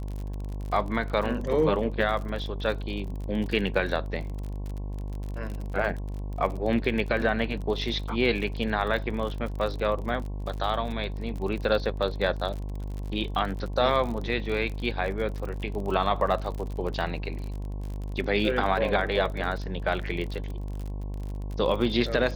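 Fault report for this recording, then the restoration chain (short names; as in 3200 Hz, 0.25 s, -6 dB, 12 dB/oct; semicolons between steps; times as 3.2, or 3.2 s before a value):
buzz 50 Hz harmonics 22 -33 dBFS
crackle 45/s -33 dBFS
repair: de-click; de-hum 50 Hz, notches 22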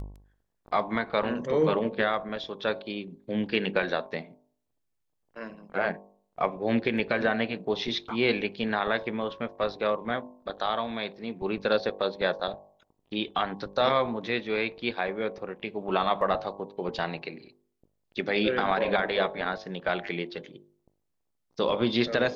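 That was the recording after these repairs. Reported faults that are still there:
none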